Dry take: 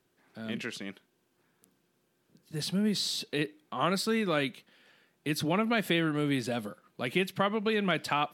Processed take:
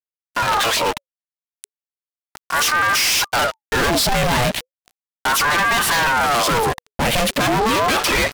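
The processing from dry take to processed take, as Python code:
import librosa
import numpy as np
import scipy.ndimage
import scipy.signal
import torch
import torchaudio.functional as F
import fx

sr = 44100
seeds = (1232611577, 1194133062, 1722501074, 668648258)

y = fx.pitch_trill(x, sr, semitones=-2.0, every_ms=141)
y = fx.fuzz(y, sr, gain_db=53.0, gate_db=-52.0)
y = fx.ring_lfo(y, sr, carrier_hz=870.0, swing_pct=60, hz=0.35)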